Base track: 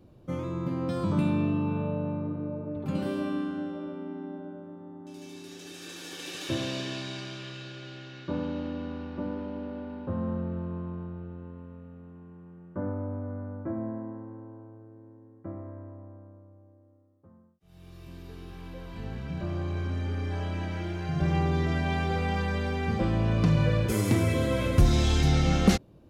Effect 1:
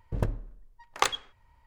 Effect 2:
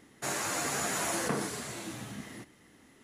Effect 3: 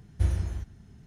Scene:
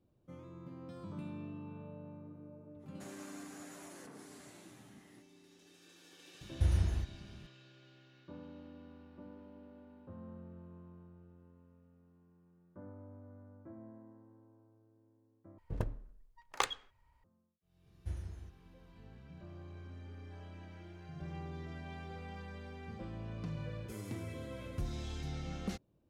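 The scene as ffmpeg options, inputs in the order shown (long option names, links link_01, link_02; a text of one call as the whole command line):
ffmpeg -i bed.wav -i cue0.wav -i cue1.wav -i cue2.wav -filter_complex "[3:a]asplit=2[link_01][link_02];[0:a]volume=-18.5dB[link_03];[2:a]alimiter=level_in=3.5dB:limit=-24dB:level=0:latency=1:release=248,volume=-3.5dB[link_04];[link_01]alimiter=limit=-19.5dB:level=0:latency=1:release=90[link_05];[link_03]asplit=2[link_06][link_07];[link_06]atrim=end=15.584[link_08];[1:a]atrim=end=1.66,asetpts=PTS-STARTPTS,volume=-8dB[link_09];[link_07]atrim=start=17.236[link_10];[link_04]atrim=end=3.03,asetpts=PTS-STARTPTS,volume=-16.5dB,afade=type=in:duration=0.05,afade=type=out:start_time=2.98:duration=0.05,adelay=2780[link_11];[link_05]atrim=end=1.06,asetpts=PTS-STARTPTS,volume=-1dB,afade=type=in:duration=0.004:curve=hsin,afade=type=out:start_time=1.056:duration=0.004:curve=hsin,adelay=6410[link_12];[link_02]atrim=end=1.06,asetpts=PTS-STARTPTS,volume=-15.5dB,afade=type=in:duration=0.004:curve=hsin,afade=type=out:start_time=1.056:duration=0.004:curve=hsin,adelay=17860[link_13];[link_08][link_09]acrossfade=duration=0.004:curve1=hsin:curve2=hsin[link_14];[link_14][link_10]acrossfade=duration=0.004:curve1=hsin:curve2=hsin[link_15];[link_15][link_11][link_12][link_13]amix=inputs=4:normalize=0" out.wav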